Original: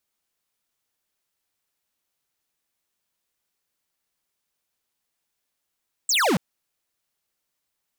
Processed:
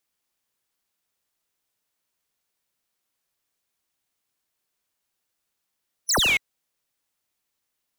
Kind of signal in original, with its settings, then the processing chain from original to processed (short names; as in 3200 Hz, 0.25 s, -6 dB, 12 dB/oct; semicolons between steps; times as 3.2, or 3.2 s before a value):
laser zap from 8400 Hz, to 150 Hz, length 0.28 s square, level -20 dB
band-swap scrambler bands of 2000 Hz